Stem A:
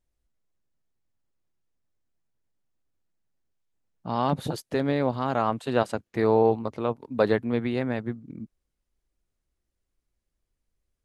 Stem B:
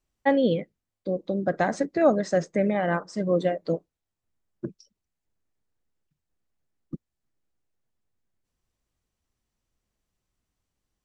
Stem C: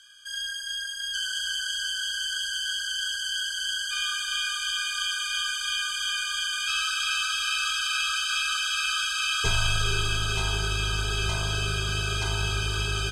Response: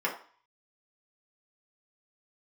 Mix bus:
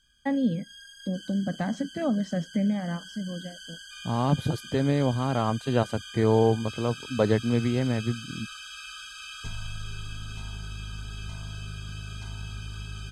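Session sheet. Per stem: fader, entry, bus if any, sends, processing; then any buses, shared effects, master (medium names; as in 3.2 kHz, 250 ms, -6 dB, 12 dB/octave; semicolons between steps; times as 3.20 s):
-4.0 dB, 0.00 s, no bus, no send, peaking EQ 76 Hz +13 dB 3 oct
-4.0 dB, 0.00 s, bus A, no send, auto duck -23 dB, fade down 1.35 s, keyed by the first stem
-14.5 dB, 0.00 s, bus A, no send, none
bus A: 0.0 dB, resonant low shelf 300 Hz +7 dB, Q 3; compression 1.5:1, threshold -33 dBFS, peak gain reduction 7.5 dB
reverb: none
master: none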